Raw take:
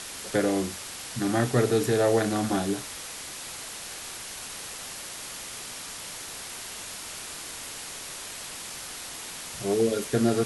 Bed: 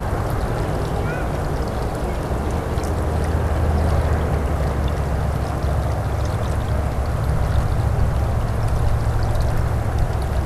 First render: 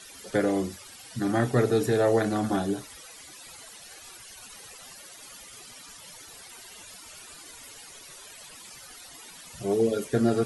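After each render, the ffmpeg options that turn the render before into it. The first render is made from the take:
ffmpeg -i in.wav -af "afftdn=noise_reduction=15:noise_floor=-39" out.wav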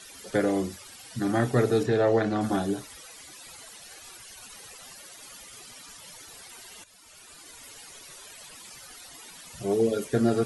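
ffmpeg -i in.wav -filter_complex "[0:a]asettb=1/sr,asplit=3[link_01][link_02][link_03];[link_01]atrim=end=1.834[link_04];[link_02]atrim=start=1.83:end=2.41,asetpts=PTS-STARTPTS,afade=type=in:duration=0.004:curve=qsin,afade=type=out:start_time=0.576:duration=0.004:curve=qsin,lowpass=4600[link_05];[link_03]atrim=start=2.406[link_06];[link_04][link_05]acrossfade=duration=0.004:curve1=hsin:curve2=qsin[link_07];[link_07][link_06]acrossfade=duration=0.004:curve1=qsin:curve2=hsin,asplit=2[link_08][link_09];[link_08]atrim=end=6.84,asetpts=PTS-STARTPTS,afade=type=out:start_time=6.836:duration=0.004:curve=hsin:silence=0.223872[link_10];[link_09]atrim=start=6.84,asetpts=PTS-STARTPTS,afade=type=in:duration=1.14:curve=qsin:silence=0.223872[link_11];[link_10][link_11]concat=n=2:v=0:a=1" out.wav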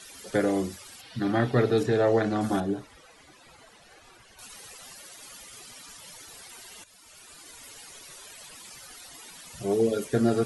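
ffmpeg -i in.wav -filter_complex "[0:a]asettb=1/sr,asplit=3[link_01][link_02][link_03];[link_01]atrim=end=1.014[link_04];[link_02]atrim=start=1.01:end=1.78,asetpts=PTS-STARTPTS,afade=type=in:duration=0.004:curve=qsin,afade=type=out:start_time=0.766:duration=0.004:curve=qsin,highshelf=frequency=5400:width_type=q:width=1.5:gain=-10.5[link_05];[link_03]atrim=start=1.776[link_06];[link_04][link_05]acrossfade=duration=0.004:curve1=hsin:curve2=qsin[link_07];[link_07][link_06]acrossfade=duration=0.004:curve1=qsin:curve2=hsin,asettb=1/sr,asplit=3[link_08][link_09][link_10];[link_08]atrim=end=2.604[link_11];[link_09]atrim=start=2.6:end=4.39,asetpts=PTS-STARTPTS,afade=type=in:duration=0.004:curve=qsin,afade=type=out:start_time=1.786:duration=0.004:curve=qsin,lowpass=frequency=1500:poles=1[link_12];[link_10]atrim=start=4.386[link_13];[link_11][link_12]acrossfade=duration=0.004:curve1=hsin:curve2=qsin[link_14];[link_14][link_13]acrossfade=duration=0.004:curve1=qsin:curve2=hsin" out.wav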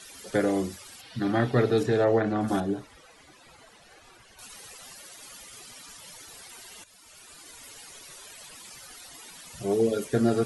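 ffmpeg -i in.wav -filter_complex "[0:a]asettb=1/sr,asplit=3[link_01][link_02][link_03];[link_01]atrim=end=2.044[link_04];[link_02]atrim=start=2.04:end=2.48,asetpts=PTS-STARTPTS,afade=type=in:duration=0.004:curve=qsin,afade=type=out:start_time=0.436:duration=0.004:curve=qsin,acrossover=split=2900[link_05][link_06];[link_06]acompressor=threshold=-57dB:ratio=4:attack=1:release=60[link_07];[link_05][link_07]amix=inputs=2:normalize=0[link_08];[link_03]atrim=start=2.476[link_09];[link_04][link_08]acrossfade=duration=0.004:curve1=hsin:curve2=qsin[link_10];[link_10][link_09]acrossfade=duration=0.004:curve1=qsin:curve2=hsin" out.wav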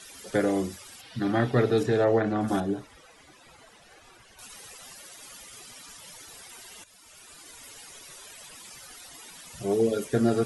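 ffmpeg -i in.wav -af "bandreject=frequency=4300:width=27" out.wav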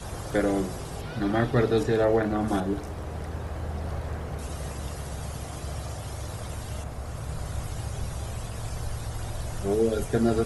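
ffmpeg -i in.wav -i bed.wav -filter_complex "[1:a]volume=-14dB[link_01];[0:a][link_01]amix=inputs=2:normalize=0" out.wav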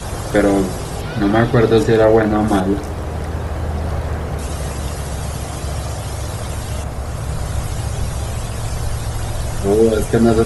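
ffmpeg -i in.wav -af "volume=11dB,alimiter=limit=-1dB:level=0:latency=1" out.wav

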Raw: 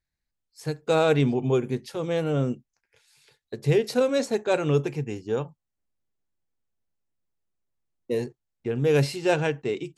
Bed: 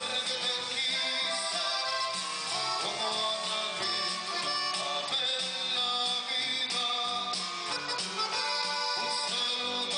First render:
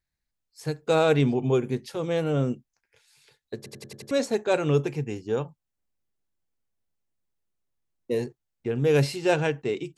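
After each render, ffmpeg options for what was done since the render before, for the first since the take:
ffmpeg -i in.wav -filter_complex "[0:a]asplit=7[link_01][link_02][link_03][link_04][link_05][link_06][link_07];[link_01]atrim=end=3.662[link_08];[link_02]atrim=start=3.568:end=3.662[link_09];[link_03]atrim=start=3.568:end=3.662[link_10];[link_04]atrim=start=3.568:end=3.662[link_11];[link_05]atrim=start=3.568:end=3.662[link_12];[link_06]atrim=start=3.568:end=3.662[link_13];[link_07]atrim=start=4.108[link_14];[link_08][link_09]acrossfade=duration=0.004:curve1=hsin:curve2=hsin[link_15];[link_15][link_10]acrossfade=duration=0.004:curve1=hsin:curve2=hsin[link_16];[link_16][link_11]acrossfade=duration=0.004:curve1=hsin:curve2=hsin[link_17];[link_17][link_12]acrossfade=duration=0.004:curve1=hsin:curve2=hsin[link_18];[link_18][link_13]acrossfade=duration=0.004:curve1=hsin:curve2=hsin[link_19];[link_19][link_14]acrossfade=duration=0.004:curve1=hsin:curve2=hsin" out.wav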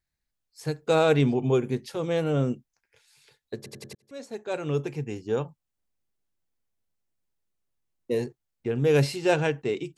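ffmpeg -i in.wav -filter_complex "[0:a]asplit=2[link_01][link_02];[link_01]atrim=end=3.95,asetpts=PTS-STARTPTS,afade=type=out:start_time=3.946:duration=0.004:curve=hsin[link_03];[link_02]atrim=start=3.95,asetpts=PTS-STARTPTS,afade=type=in:duration=1.38[link_04];[link_03][link_04]concat=n=2:v=0:a=1" out.wav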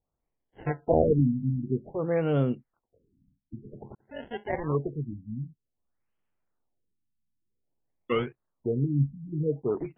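ffmpeg -i in.wav -af "acrusher=samples=21:mix=1:aa=0.000001:lfo=1:lforange=33.6:lforate=0.3,afftfilt=real='re*lt(b*sr/1024,260*pow(3500/260,0.5+0.5*sin(2*PI*0.52*pts/sr)))':imag='im*lt(b*sr/1024,260*pow(3500/260,0.5+0.5*sin(2*PI*0.52*pts/sr)))':win_size=1024:overlap=0.75" out.wav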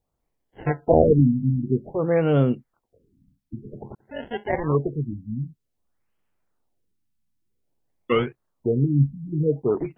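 ffmpeg -i in.wav -af "volume=6dB" out.wav

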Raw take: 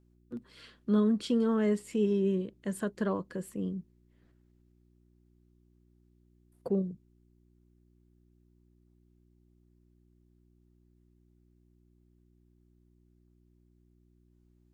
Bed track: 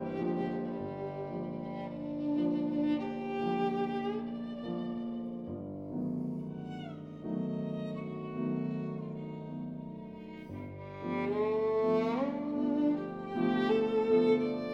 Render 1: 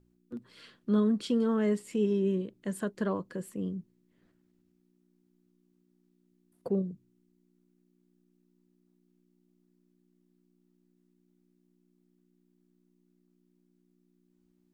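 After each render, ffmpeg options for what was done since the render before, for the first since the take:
ffmpeg -i in.wav -af "bandreject=frequency=60:width_type=h:width=4,bandreject=frequency=120:width_type=h:width=4" out.wav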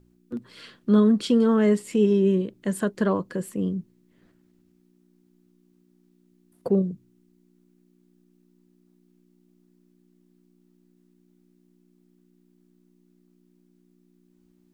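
ffmpeg -i in.wav -af "volume=8dB" out.wav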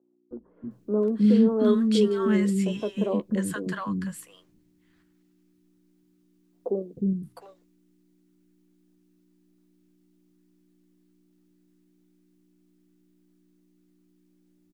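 ffmpeg -i in.wav -filter_complex "[0:a]asplit=2[link_01][link_02];[link_02]adelay=14,volume=-12dB[link_03];[link_01][link_03]amix=inputs=2:normalize=0,acrossover=split=280|870[link_04][link_05][link_06];[link_04]adelay=310[link_07];[link_06]adelay=710[link_08];[link_07][link_05][link_08]amix=inputs=3:normalize=0" out.wav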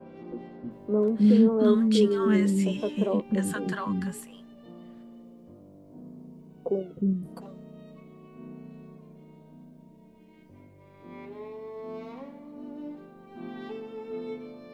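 ffmpeg -i in.wav -i bed.wav -filter_complex "[1:a]volume=-10dB[link_01];[0:a][link_01]amix=inputs=2:normalize=0" out.wav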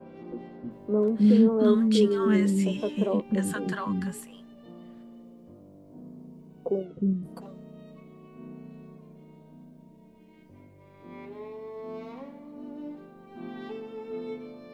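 ffmpeg -i in.wav -filter_complex "[0:a]asettb=1/sr,asplit=3[link_01][link_02][link_03];[link_01]atrim=end=6.854[link_04];[link_02]atrim=start=6.85:end=7.25,asetpts=PTS-STARTPTS,afade=type=in:duration=0.004:curve=qsin,afade=type=out:start_time=0.396:duration=0.004:curve=qsin,lowpass=7000[link_05];[link_03]atrim=start=7.246[link_06];[link_04][link_05]acrossfade=duration=0.004:curve1=hsin:curve2=qsin[link_07];[link_07][link_06]acrossfade=duration=0.004:curve1=qsin:curve2=hsin" out.wav

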